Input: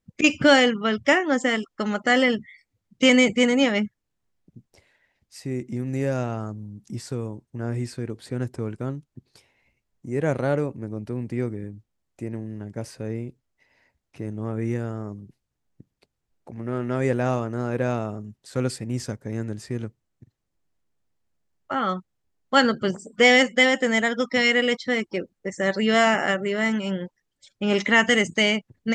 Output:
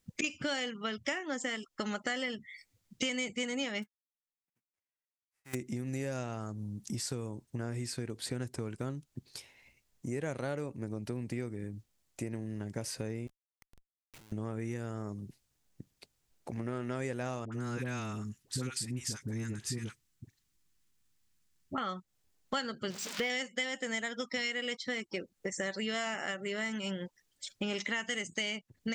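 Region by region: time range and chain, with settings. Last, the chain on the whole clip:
0:03.82–0:05.53: spectral envelope flattened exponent 0.3 + high shelf with overshoot 2,800 Hz −10.5 dB, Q 1.5 + expander for the loud parts 2.5 to 1, over −40 dBFS
0:13.27–0:14.32: spectral tilt +3 dB per octave + downward compressor 2 to 1, threshold −56 dBFS + comparator with hysteresis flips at −51.5 dBFS
0:17.45–0:21.78: parametric band 590 Hz −12 dB 1 octave + all-pass dispersion highs, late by 72 ms, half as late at 740 Hz
0:22.90–0:23.30: spike at every zero crossing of −15 dBFS + high-frequency loss of the air 220 metres
whole clip: high-shelf EQ 2,400 Hz +11 dB; downward compressor 6 to 1, threshold −34 dBFS

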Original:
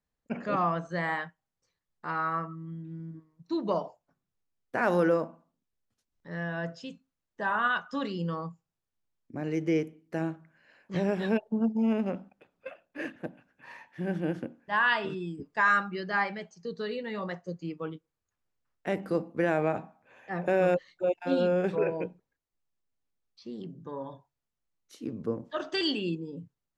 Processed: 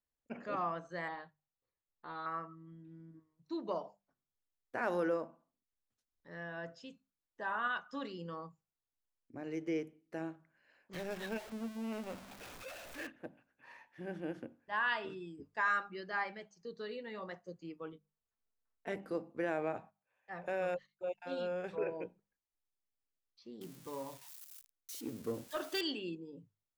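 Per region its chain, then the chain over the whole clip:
0:01.08–0:02.26: running median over 15 samples + Chebyshev low-pass filter 4,400 Hz, order 8 + dynamic equaliser 1,800 Hz, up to −5 dB, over −44 dBFS, Q 0.79
0:10.93–0:13.07: converter with a step at zero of −33.5 dBFS + parametric band 320 Hz −5.5 dB 2.6 octaves
0:17.92–0:18.96: comb filter 4.5 ms, depth 55% + one half of a high-frequency compander decoder only
0:19.78–0:21.78: noise gate −53 dBFS, range −15 dB + parametric band 310 Hz −9 dB 0.97 octaves
0:23.61–0:25.81: spike at every zero crossing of −36 dBFS + leveller curve on the samples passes 1
whole clip: parametric band 170 Hz −6.5 dB 0.63 octaves; mains-hum notches 50/100/150/200 Hz; level −8.5 dB

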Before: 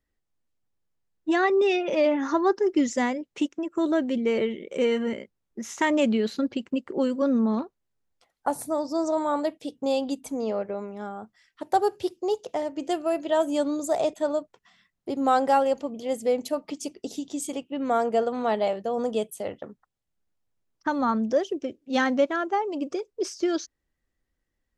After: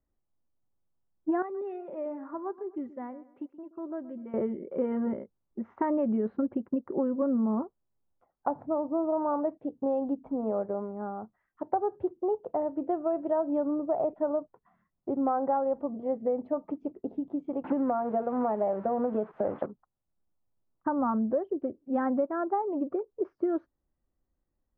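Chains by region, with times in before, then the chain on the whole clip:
0:01.42–0:04.34: first-order pre-emphasis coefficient 0.8 + repeating echo 125 ms, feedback 36%, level −17 dB
0:17.64–0:19.66: spike at every zero crossing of −21.5 dBFS + multiband upward and downward compressor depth 100%
whole clip: low-pass filter 1,200 Hz 24 dB per octave; notch filter 460 Hz, Q 12; downward compressor, threshold −24 dBFS

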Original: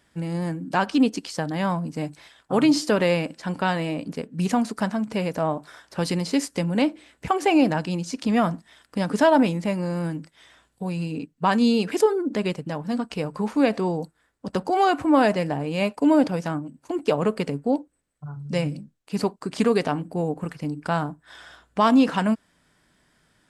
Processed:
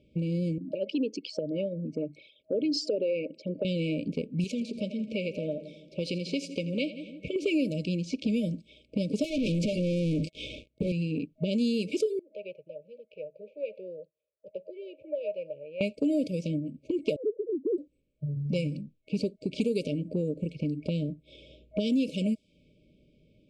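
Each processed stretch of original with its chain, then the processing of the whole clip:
0:00.58–0:03.65: spectral envelope exaggerated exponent 2 + high-pass filter 500 Hz 6 dB per octave
0:04.44–0:07.36: low-shelf EQ 470 Hz −11.5 dB + echo with a time of its own for lows and highs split 410 Hz, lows 155 ms, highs 84 ms, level −15 dB
0:09.24–0:10.92: downward compressor 16 to 1, threshold −26 dBFS + notch comb filter 190 Hz + leveller curve on the samples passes 5
0:12.19–0:15.81: formant filter a + phaser with its sweep stopped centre 620 Hz, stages 4
0:17.16–0:17.78: three sine waves on the formant tracks + Gaussian smoothing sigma 18 samples + comb filter 2.7 ms, depth 34%
whole clip: brick-wall band-stop 630–2,200 Hz; low-pass that shuts in the quiet parts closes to 1,700 Hz, open at −16 dBFS; downward compressor 3 to 1, threshold −34 dBFS; level +5 dB

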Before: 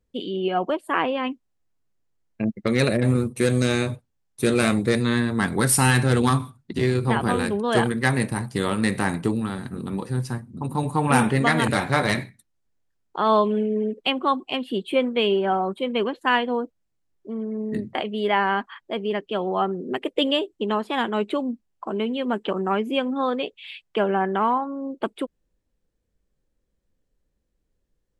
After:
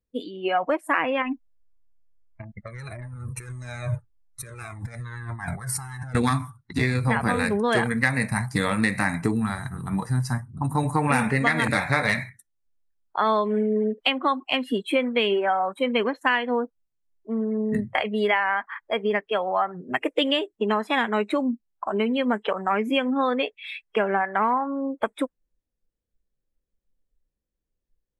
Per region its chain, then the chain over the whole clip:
0:01.22–0:06.15: high-shelf EQ 2,300 Hz −7 dB + compressor whose output falls as the input rises −31 dBFS + flanger whose copies keep moving one way falling 1.7 Hz
whole clip: noise reduction from a noise print of the clip's start 15 dB; dynamic equaliser 2,000 Hz, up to +8 dB, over −42 dBFS, Q 2; downward compressor 4 to 1, threshold −24 dBFS; level +4.5 dB

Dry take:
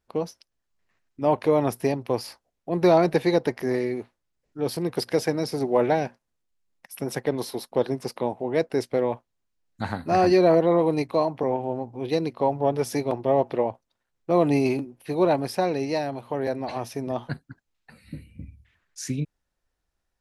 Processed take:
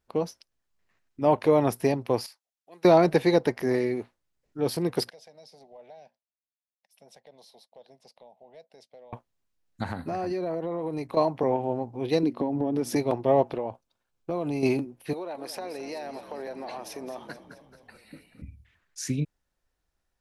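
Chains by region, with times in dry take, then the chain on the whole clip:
0:02.26–0:02.85: low-pass filter 4,000 Hz 6 dB per octave + first difference
0:05.10–0:09.13: band-pass filter 790–2,100 Hz + downward compressor 3 to 1, threshold −34 dBFS + drawn EQ curve 200 Hz 0 dB, 320 Hz −20 dB, 630 Hz −9 dB, 1,300 Hz −29 dB, 2,600 Hz −15 dB, 3,700 Hz −4 dB, 11,000 Hz +8 dB
0:09.83–0:11.17: dynamic equaliser 3,700 Hz, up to −4 dB, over −43 dBFS, Q 0.71 + downward compressor 8 to 1, threshold −27 dBFS
0:12.23–0:12.96: downward compressor 10 to 1, threshold −29 dBFS + parametric band 280 Hz +14.5 dB 0.88 octaves
0:13.49–0:14.63: notch filter 1,900 Hz, Q 6.7 + downward compressor 5 to 1, threshold −26 dBFS
0:15.13–0:18.42: high-pass filter 370 Hz + downward compressor, threshold −33 dBFS + echo with shifted repeats 217 ms, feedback 60%, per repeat −41 Hz, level −12.5 dB
whole clip: no processing

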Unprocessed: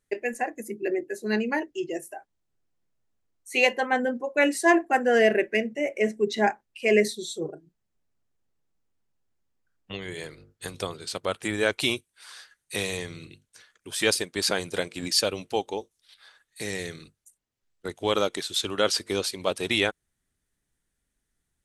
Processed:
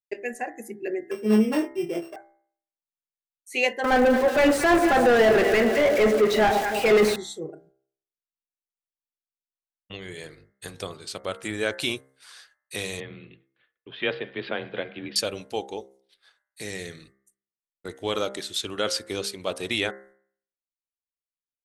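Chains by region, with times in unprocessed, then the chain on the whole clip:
0:01.11–0:02.16: samples sorted by size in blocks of 16 samples + tilt shelving filter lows +8 dB, about 1,200 Hz + double-tracking delay 23 ms −4 dB
0:03.84–0:07.16: spike at every zero crossing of −19.5 dBFS + delay that swaps between a low-pass and a high-pass 109 ms, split 880 Hz, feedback 74%, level −13 dB + mid-hump overdrive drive 31 dB, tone 1,000 Hz, clips at −6.5 dBFS
0:13.00–0:15.16: Butterworth low-pass 3,400 Hz 48 dB per octave + feedback echo with a high-pass in the loop 101 ms, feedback 78%, high-pass 360 Hz, level −23.5 dB + frequency shifter +23 Hz
whole clip: downward expander −48 dBFS; parametric band 950 Hz −3 dB 0.35 octaves; hum removal 66.62 Hz, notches 32; level −2 dB

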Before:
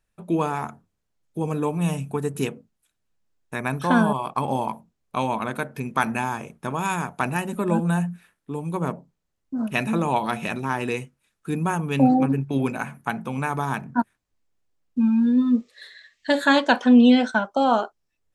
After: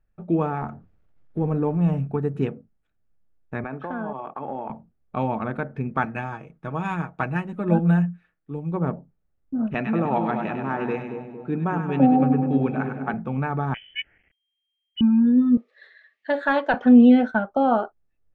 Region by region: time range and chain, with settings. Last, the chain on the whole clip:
0:00.61–0:02.07: mu-law and A-law mismatch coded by mu + dynamic equaliser 3,000 Hz, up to −4 dB, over −47 dBFS, Q 0.78
0:03.64–0:04.70: one scale factor per block 7 bits + three-way crossover with the lows and the highs turned down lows −16 dB, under 240 Hz, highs −15 dB, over 3,500 Hz + downward compressor 12 to 1, threshold −25 dBFS
0:06.05–0:08.72: high-shelf EQ 2,200 Hz +8.5 dB + comb filter 6.3 ms, depth 41% + expander for the loud parts, over −32 dBFS
0:09.74–0:13.14: band-pass filter 170–7,500 Hz + echo with a time of its own for lows and highs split 840 Hz, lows 230 ms, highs 99 ms, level −6.5 dB
0:13.74–0:15.01: spike at every zero crossing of −25.5 dBFS + drawn EQ curve 1,300 Hz 0 dB, 2,000 Hz −27 dB, 6,600 Hz +2 dB + voice inversion scrambler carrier 3,200 Hz
0:15.57–0:16.74: high-pass filter 440 Hz + hard clipping −8.5 dBFS
whole clip: low-pass filter 1,600 Hz 12 dB per octave; low-shelf EQ 110 Hz +9 dB; notch filter 1,000 Hz, Q 6.7

